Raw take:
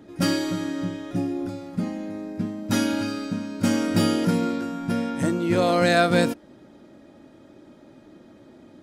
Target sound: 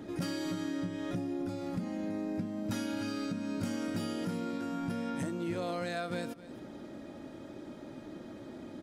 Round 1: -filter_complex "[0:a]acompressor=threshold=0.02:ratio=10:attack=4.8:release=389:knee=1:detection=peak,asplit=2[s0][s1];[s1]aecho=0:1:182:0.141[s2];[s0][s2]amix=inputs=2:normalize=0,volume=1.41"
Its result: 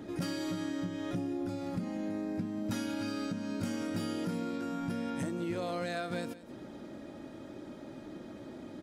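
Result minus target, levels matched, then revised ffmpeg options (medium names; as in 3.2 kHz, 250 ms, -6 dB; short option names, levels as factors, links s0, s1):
echo 81 ms early
-filter_complex "[0:a]acompressor=threshold=0.02:ratio=10:attack=4.8:release=389:knee=1:detection=peak,asplit=2[s0][s1];[s1]aecho=0:1:263:0.141[s2];[s0][s2]amix=inputs=2:normalize=0,volume=1.41"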